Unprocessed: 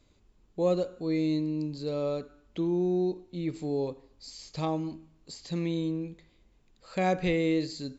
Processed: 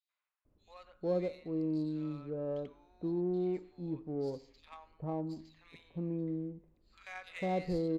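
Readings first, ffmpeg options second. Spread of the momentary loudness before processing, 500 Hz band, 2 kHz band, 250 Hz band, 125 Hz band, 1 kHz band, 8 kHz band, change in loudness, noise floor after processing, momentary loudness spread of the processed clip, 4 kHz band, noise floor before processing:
15 LU, −6.5 dB, −9.0 dB, −6.5 dB, −6.0 dB, −8.0 dB, can't be measured, −7.0 dB, below −85 dBFS, 20 LU, −14.0 dB, −65 dBFS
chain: -filter_complex "[0:a]acrossover=split=1100|3300[link_01][link_02][link_03];[link_02]adelay=90[link_04];[link_01]adelay=450[link_05];[link_05][link_04][link_03]amix=inputs=3:normalize=0,adynamicsmooth=sensitivity=6.5:basefreq=2200,volume=-6dB"

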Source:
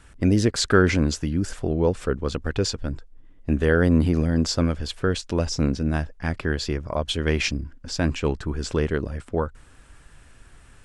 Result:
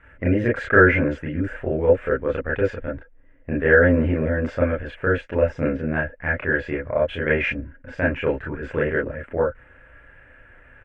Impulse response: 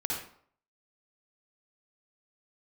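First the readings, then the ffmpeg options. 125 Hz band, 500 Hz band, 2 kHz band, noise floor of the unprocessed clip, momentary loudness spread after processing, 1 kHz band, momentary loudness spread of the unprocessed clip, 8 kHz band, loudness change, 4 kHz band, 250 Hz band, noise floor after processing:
−2.5 dB, +5.0 dB, +8.5 dB, −51 dBFS, 12 LU, +3.0 dB, 9 LU, below −25 dB, +2.0 dB, −13.0 dB, −1.5 dB, −51 dBFS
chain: -filter_complex "[0:a]firequalizer=gain_entry='entry(340,0);entry(530,10);entry(820,1);entry(2000,12);entry(4400,-25)':delay=0.05:min_phase=1[link_01];[1:a]atrim=start_sample=2205,atrim=end_sample=3528,asetrate=83790,aresample=44100[link_02];[link_01][link_02]afir=irnorm=-1:irlink=0"

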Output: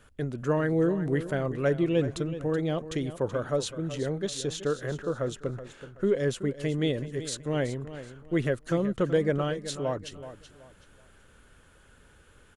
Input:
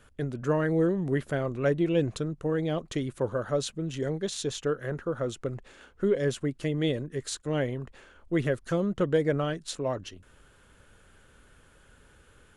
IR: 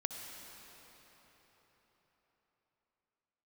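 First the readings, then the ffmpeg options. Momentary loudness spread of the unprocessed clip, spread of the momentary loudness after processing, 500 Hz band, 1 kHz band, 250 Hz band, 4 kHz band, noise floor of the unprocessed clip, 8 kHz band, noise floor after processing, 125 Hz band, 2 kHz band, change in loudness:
8 LU, 10 LU, 0.0 dB, 0.0 dB, +0.5 dB, 0.0 dB, −59 dBFS, 0.0 dB, −58 dBFS, +0.5 dB, 0.0 dB, +0.5 dB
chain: -af "aecho=1:1:377|754|1131:0.224|0.0672|0.0201"

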